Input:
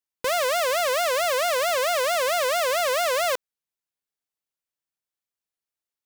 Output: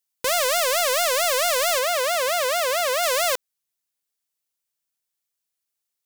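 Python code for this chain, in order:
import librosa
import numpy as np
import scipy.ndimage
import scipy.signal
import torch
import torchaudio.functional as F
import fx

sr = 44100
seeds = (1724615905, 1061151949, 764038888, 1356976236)

y = fx.high_shelf(x, sr, hz=3300.0, db=fx.steps((0.0, 12.0), (1.78, 4.0), (3.02, 10.0)))
y = 10.0 ** (-7.5 / 20.0) * np.tanh(y / 10.0 ** (-7.5 / 20.0))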